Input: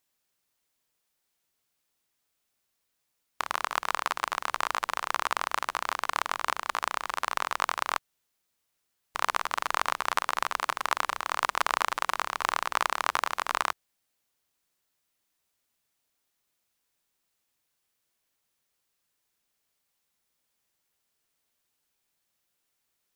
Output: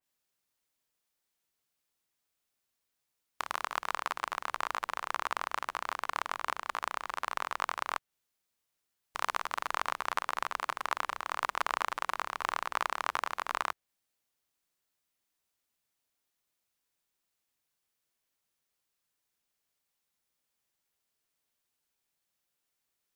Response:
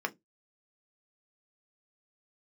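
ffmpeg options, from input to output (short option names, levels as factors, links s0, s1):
-filter_complex "[0:a]asplit=2[s0][s1];[s1]acrusher=bits=3:mode=log:mix=0:aa=0.000001,volume=0.447[s2];[s0][s2]amix=inputs=2:normalize=0,adynamicequalizer=threshold=0.0126:dfrequency=3100:dqfactor=0.7:tfrequency=3100:tqfactor=0.7:attack=5:release=100:ratio=0.375:range=2:mode=cutabove:tftype=highshelf,volume=0.398"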